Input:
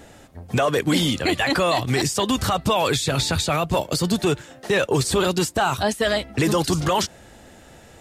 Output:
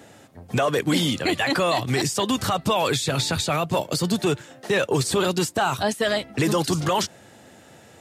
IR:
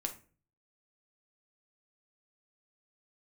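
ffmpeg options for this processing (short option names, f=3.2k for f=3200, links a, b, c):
-af "highpass=f=95:w=0.5412,highpass=f=95:w=1.3066,volume=-1.5dB"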